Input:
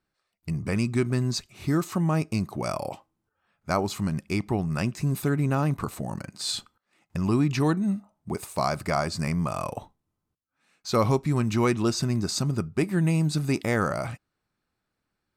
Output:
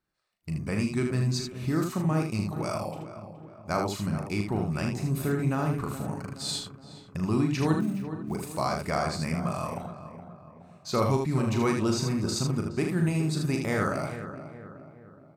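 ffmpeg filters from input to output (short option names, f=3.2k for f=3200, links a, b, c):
-filter_complex "[0:a]asplit=2[a][b];[b]aecho=0:1:38|78:0.501|0.562[c];[a][c]amix=inputs=2:normalize=0,asettb=1/sr,asplit=3[d][e][f];[d]atrim=end=7.804[g];[e]atrim=start=7.8:end=8.36,asetpts=PTS-STARTPTS,afade=t=in:d=0.004:c=qsin,afade=t=out:st=0.556:d=0.004:c=qsin,acrusher=bits=7:mode=log:mix=0:aa=0.000001[h];[f]atrim=start=8.356[i];[g][h]acrossfade=d=0.004:c1=hsin:c2=qsin[j];[j][i]acrossfade=d=0.004:c1=qsin:c2=hsin,asplit=2[k][l];[l]adelay=420,lowpass=f=1.7k:p=1,volume=-11dB,asplit=2[m][n];[n]adelay=420,lowpass=f=1.7k:p=1,volume=0.51,asplit=2[o][p];[p]adelay=420,lowpass=f=1.7k:p=1,volume=0.51,asplit=2[q][r];[r]adelay=420,lowpass=f=1.7k:p=1,volume=0.51,asplit=2[s][t];[t]adelay=420,lowpass=f=1.7k:p=1,volume=0.51[u];[m][o][q][s][u]amix=inputs=5:normalize=0[v];[k][v]amix=inputs=2:normalize=0,volume=-4dB"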